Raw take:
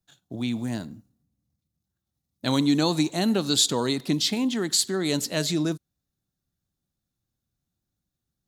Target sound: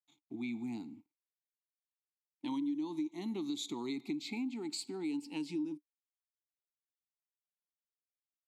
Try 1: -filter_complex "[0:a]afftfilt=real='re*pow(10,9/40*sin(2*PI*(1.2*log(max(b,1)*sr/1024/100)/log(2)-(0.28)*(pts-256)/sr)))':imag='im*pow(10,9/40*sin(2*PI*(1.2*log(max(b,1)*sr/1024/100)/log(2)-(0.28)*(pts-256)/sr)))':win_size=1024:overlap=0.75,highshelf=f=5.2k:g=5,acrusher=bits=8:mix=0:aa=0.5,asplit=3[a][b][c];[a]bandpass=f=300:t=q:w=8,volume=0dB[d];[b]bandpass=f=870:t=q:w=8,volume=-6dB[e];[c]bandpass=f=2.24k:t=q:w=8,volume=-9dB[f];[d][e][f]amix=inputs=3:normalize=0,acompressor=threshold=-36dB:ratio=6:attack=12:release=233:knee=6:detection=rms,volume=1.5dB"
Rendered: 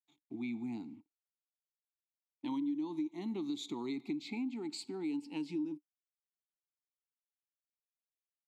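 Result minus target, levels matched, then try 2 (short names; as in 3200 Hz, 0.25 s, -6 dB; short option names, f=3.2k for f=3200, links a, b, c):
8000 Hz band -5.5 dB
-filter_complex "[0:a]afftfilt=real='re*pow(10,9/40*sin(2*PI*(1.2*log(max(b,1)*sr/1024/100)/log(2)-(0.28)*(pts-256)/sr)))':imag='im*pow(10,9/40*sin(2*PI*(1.2*log(max(b,1)*sr/1024/100)/log(2)-(0.28)*(pts-256)/sr)))':win_size=1024:overlap=0.75,highshelf=f=5.2k:g=16,acrusher=bits=8:mix=0:aa=0.5,asplit=3[a][b][c];[a]bandpass=f=300:t=q:w=8,volume=0dB[d];[b]bandpass=f=870:t=q:w=8,volume=-6dB[e];[c]bandpass=f=2.24k:t=q:w=8,volume=-9dB[f];[d][e][f]amix=inputs=3:normalize=0,acompressor=threshold=-36dB:ratio=6:attack=12:release=233:knee=6:detection=rms,volume=1.5dB"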